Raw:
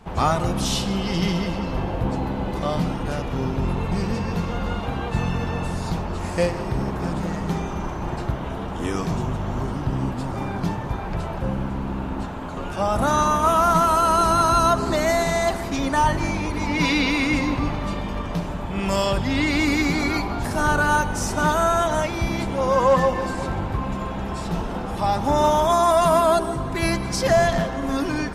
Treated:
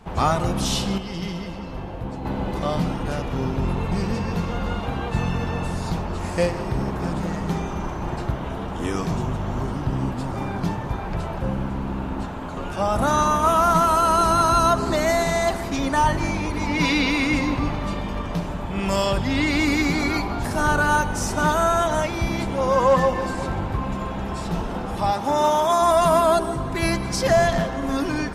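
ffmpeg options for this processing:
-filter_complex "[0:a]asettb=1/sr,asplit=3[s0][s1][s2];[s0]atrim=end=25.114[s3];[s1]atrim=start=25.11:end=25.82,asetpts=PTS-STARTPTS,afade=t=in:d=0.004:c=qsin,afade=t=out:st=0.706:d=0.004:c=qsin,highpass=f=280:p=1[s4];[s2]atrim=start=25.816[s5];[s3][s4]acrossfade=d=0.004:c1=hsin:c2=qsin[s6];[s6][s5]acrossfade=d=0.004:c1=qsin:c2=hsin,asplit=3[s7][s8][s9];[s7]atrim=end=0.982[s10];[s8]atrim=start=0.978:end=2.252,asetpts=PTS-STARTPTS,volume=0.447[s11];[s9]atrim=start=2.248[s12];[s10][s11]acrossfade=d=0.004:c1=hsin:c2=hsin[s13];[s13][s12]acrossfade=d=0.004:c1=hsin:c2=hsin"

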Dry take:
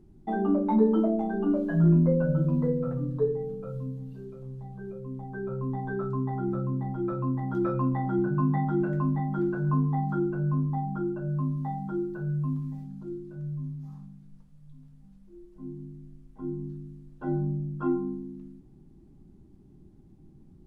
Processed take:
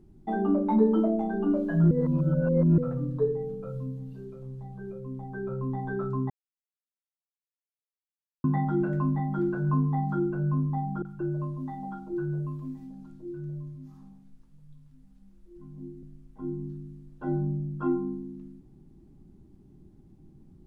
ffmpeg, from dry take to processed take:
-filter_complex "[0:a]asettb=1/sr,asplit=3[s0][s1][s2];[s0]atrim=end=11.024[s3];[s1]atrim=start=11.02:end=16.03,asetpts=PTS-STARTPTS,afade=t=in:d=0.004:c=qsin,afade=t=out:st=5.006:d=0.004:c=qsin,acrossover=split=200|740[s4][s5][s6];[s6]adelay=30[s7];[s5]adelay=180[s8];[s4][s8][s7]amix=inputs=3:normalize=0,atrim=end_sample=220941[s9];[s2]atrim=start=16.026[s10];[s3][s9]acrossfade=d=0.004:c1=hsin:c2=qsin[s11];[s11][s10]acrossfade=d=0.004:c1=qsin:c2=hsin,asplit=5[s12][s13][s14][s15][s16];[s12]atrim=end=1.912[s17];[s13]atrim=start=1.908:end=2.782,asetpts=PTS-STARTPTS,areverse[s18];[s14]atrim=start=2.778:end=6.3,asetpts=PTS-STARTPTS,afade=t=out:st=3.518:d=0.004:c=hsin[s19];[s15]atrim=start=6.3:end=8.44,asetpts=PTS-STARTPTS,volume=0[s20];[s16]atrim=start=8.44,asetpts=PTS-STARTPTS,afade=t=in:d=0.004:c=hsin[s21];[s17][s18]acrossfade=d=0.004:c1=hsin:c2=hsin[s22];[s19][s20][s21]concat=n=3:v=0:a=1[s23];[s22][s23]acrossfade=d=0.004:c1=hsin:c2=hsin"

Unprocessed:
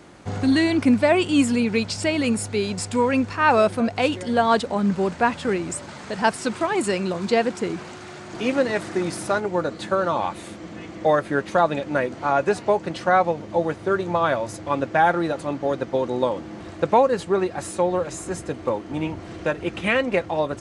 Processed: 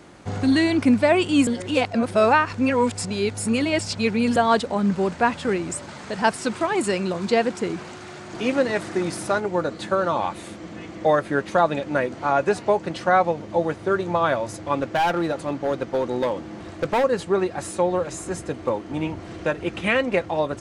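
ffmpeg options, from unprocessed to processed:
-filter_complex "[0:a]asettb=1/sr,asplit=3[s0][s1][s2];[s0]atrim=end=14.824[s3];[s1]atrim=start=14.82:end=17.04,asetpts=PTS-STARTPTS,afade=t=in:d=0.004:c=qsin,afade=t=out:st=2.216:d=0.004:c=qsin,asoftclip=type=hard:threshold=0.141[s4];[s2]atrim=start=17.036[s5];[s3][s4]acrossfade=d=0.004:c1=hsin:c2=qsin[s6];[s6][s5]acrossfade=d=0.004:c1=qsin:c2=hsin,asplit=3[s7][s8][s9];[s7]atrim=end=1.472[s10];[s8]atrim=start=1.468:end=4.362,asetpts=PTS-STARTPTS,areverse[s11];[s9]atrim=start=4.358[s12];[s10][s11]acrossfade=d=0.004:c1=hsin:c2=hsin[s13];[s13][s12]acrossfade=d=0.004:c1=hsin:c2=hsin"

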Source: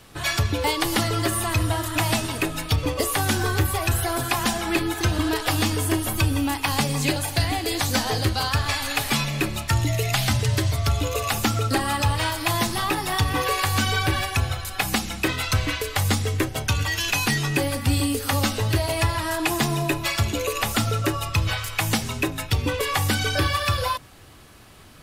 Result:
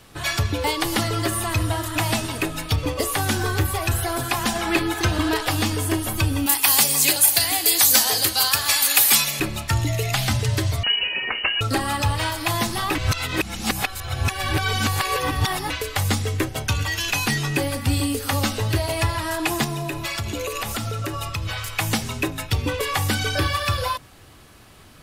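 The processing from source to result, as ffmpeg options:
-filter_complex "[0:a]asettb=1/sr,asplit=3[s0][s1][s2];[s0]atrim=end=4.554[s3];[s1]atrim=start=4.55:end=5.45,asetpts=PTS-STARTPTS,afade=t=in:d=0.004:c=qsin,afade=t=out:st=0.896:d=0.004:c=qsin,equalizer=f=1400:w=0.31:g=3.5[s4];[s2]atrim=start=5.446[s5];[s3][s4]acrossfade=d=0.004:c1=hsin:c2=qsin[s6];[s6][s5]acrossfade=d=0.004:c1=qsin:c2=hsin,asettb=1/sr,asplit=3[s7][s8][s9];[s7]atrim=end=6.464[s10];[s8]atrim=start=6.46:end=9.4,asetpts=PTS-STARTPTS,afade=t=in:d=0.004:c=qsin,afade=t=out:st=2.936:d=0.004:c=qsin,aemphasis=mode=production:type=riaa[s11];[s9]atrim=start=9.396[s12];[s10][s11]acrossfade=d=0.004:c1=hsin:c2=qsin[s13];[s13][s12]acrossfade=d=0.004:c1=qsin:c2=hsin,asettb=1/sr,asplit=3[s14][s15][s16];[s14]atrim=end=10.834[s17];[s15]atrim=start=10.83:end=11.61,asetpts=PTS-STARTPTS,afade=t=in:d=0.004:c=qsin,afade=t=out:st=0.776:d=0.004:c=qsin,lowpass=f=2600:t=q:w=0.5098,lowpass=f=2600:t=q:w=0.6013,lowpass=f=2600:t=q:w=0.9,lowpass=f=2600:t=q:w=2.563,afreqshift=-3000[s18];[s16]atrim=start=11.606[s19];[s17][s18]acrossfade=d=0.004:c1=hsin:c2=qsin[s20];[s20][s19]acrossfade=d=0.004:c1=qsin:c2=hsin,asettb=1/sr,asplit=3[s21][s22][s23];[s21]atrim=end=19.644[s24];[s22]atrim=start=19.64:end=21.74,asetpts=PTS-STARTPTS,afade=t=in:d=0.004:c=qsin,afade=t=out:st=2.096:d=0.004:c=qsin,acompressor=threshold=0.0708:ratio=6:attack=3.2:release=140:knee=1:detection=peak[s25];[s23]atrim=start=21.736[s26];[s24][s25]acrossfade=d=0.004:c1=hsin:c2=qsin[s27];[s27][s26]acrossfade=d=0.004:c1=qsin:c2=hsin,asplit=3[s28][s29][s30];[s28]atrim=end=12.952[s31];[s29]atrim=start=12.948:end=15.702,asetpts=PTS-STARTPTS,areverse[s32];[s30]atrim=start=15.698[s33];[s31][s32]acrossfade=d=0.004:c1=hsin:c2=hsin[s34];[s34][s33]acrossfade=d=0.004:c1=hsin:c2=hsin"

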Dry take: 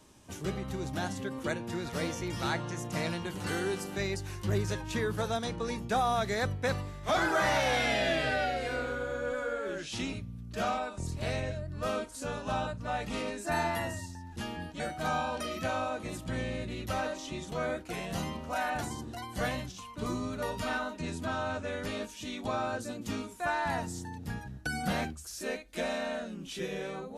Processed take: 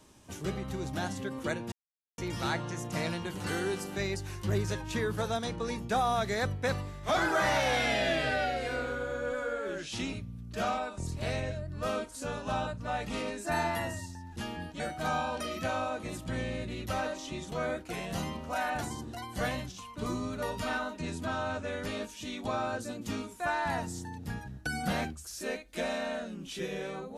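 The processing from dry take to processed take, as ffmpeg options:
-filter_complex "[0:a]asplit=3[s0][s1][s2];[s0]atrim=end=1.72,asetpts=PTS-STARTPTS,afade=t=out:st=1.716:d=0.004:c=hsin[s3];[s1]atrim=start=1.72:end=2.18,asetpts=PTS-STARTPTS,volume=0[s4];[s2]atrim=start=2.18,asetpts=PTS-STARTPTS,afade=t=in:d=0.004:c=hsin[s5];[s3][s4][s5]concat=n=3:v=0:a=1"

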